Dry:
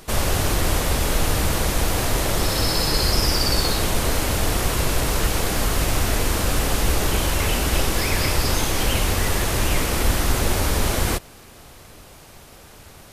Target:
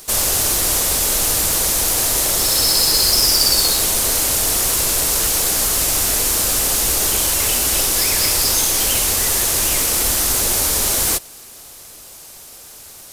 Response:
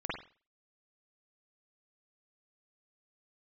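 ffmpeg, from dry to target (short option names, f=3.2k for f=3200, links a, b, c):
-filter_complex "[0:a]acrossover=split=790[a][b];[b]acrusher=bits=4:mode=log:mix=0:aa=0.000001[c];[a][c]amix=inputs=2:normalize=0,bass=f=250:g=-7,treble=f=4k:g=14,volume=-1dB"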